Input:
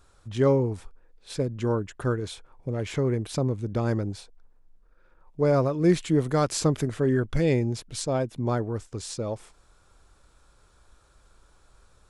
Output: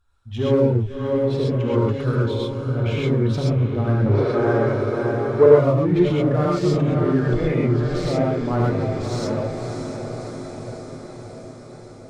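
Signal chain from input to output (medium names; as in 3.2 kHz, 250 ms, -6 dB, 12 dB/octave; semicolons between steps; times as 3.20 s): expander on every frequency bin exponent 1.5; on a send: echo that smears into a reverb 624 ms, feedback 64%, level -10 dB; on the sum: peak limiter -21.5 dBFS, peak gain reduction 11.5 dB; low-pass 3.9 kHz 6 dB/octave; low-pass that closes with the level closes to 2.6 kHz, closed at -27 dBFS; in parallel at -4.5 dB: hard clipper -38.5 dBFS, distortion -4 dB; 2.12–2.98 s: on the sum: band-stop 1.9 kHz, Q 7.4; 4.06–5.46 s: high-order bell 820 Hz +13.5 dB 3 oct; gated-style reverb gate 150 ms rising, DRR -4.5 dB; trim +3.5 dB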